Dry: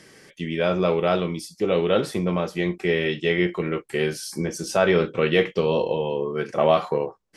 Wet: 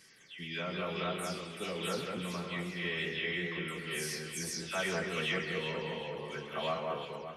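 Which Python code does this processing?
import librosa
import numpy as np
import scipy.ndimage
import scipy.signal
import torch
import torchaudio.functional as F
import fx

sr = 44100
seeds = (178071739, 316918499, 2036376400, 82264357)

y = fx.spec_delay(x, sr, highs='early', ms=207)
y = fx.tone_stack(y, sr, knobs='5-5-5')
y = fx.echo_alternate(y, sr, ms=191, hz=2100.0, feedback_pct=62, wet_db=-3.0)
y = fx.echo_warbled(y, sr, ms=132, feedback_pct=60, rate_hz=2.8, cents=147, wet_db=-13.0)
y = y * 10.0 ** (1.0 / 20.0)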